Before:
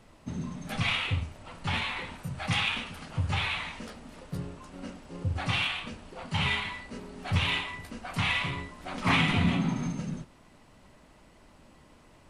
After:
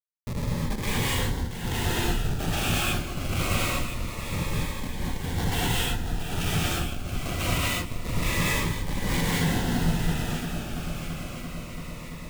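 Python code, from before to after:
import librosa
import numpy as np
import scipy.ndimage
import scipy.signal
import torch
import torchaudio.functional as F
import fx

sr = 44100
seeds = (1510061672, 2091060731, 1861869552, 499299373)

p1 = fx.dereverb_blind(x, sr, rt60_s=1.6)
p2 = fx.low_shelf(p1, sr, hz=130.0, db=9.0)
p3 = fx.schmitt(p2, sr, flips_db=-33.0)
p4 = p3 + fx.echo_heads(p3, sr, ms=338, heads='second and third', feedback_pct=65, wet_db=-10.0, dry=0)
p5 = fx.rev_gated(p4, sr, seeds[0], gate_ms=260, shape='rising', drr_db=-5.0)
p6 = fx.notch_cascade(p5, sr, direction='falling', hz=0.25)
y = p6 * 10.0 ** (1.0 / 20.0)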